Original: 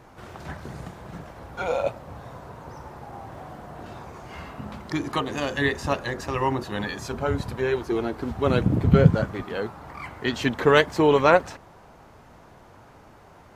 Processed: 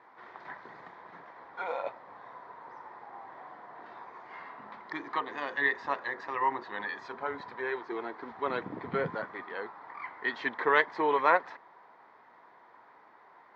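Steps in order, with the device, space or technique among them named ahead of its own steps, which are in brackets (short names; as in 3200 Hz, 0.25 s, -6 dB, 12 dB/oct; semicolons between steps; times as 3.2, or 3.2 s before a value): phone earpiece (speaker cabinet 420–3900 Hz, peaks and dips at 580 Hz -4 dB, 1000 Hz +8 dB, 1900 Hz +9 dB, 2800 Hz -9 dB); gain -7.5 dB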